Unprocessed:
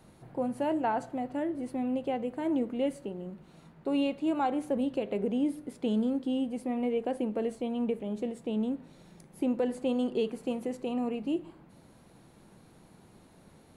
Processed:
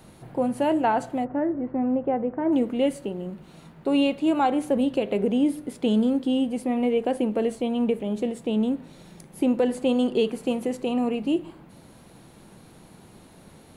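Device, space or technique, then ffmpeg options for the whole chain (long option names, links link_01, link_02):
presence and air boost: -filter_complex "[0:a]asplit=3[link_01][link_02][link_03];[link_01]afade=type=out:start_time=1.24:duration=0.02[link_04];[link_02]lowpass=frequency=1700:width=0.5412,lowpass=frequency=1700:width=1.3066,afade=type=in:start_time=1.24:duration=0.02,afade=type=out:start_time=2.51:duration=0.02[link_05];[link_03]afade=type=in:start_time=2.51:duration=0.02[link_06];[link_04][link_05][link_06]amix=inputs=3:normalize=0,equalizer=frequency=3100:width_type=o:width=0.77:gain=2.5,highshelf=frequency=9100:gain=5,volume=7dB"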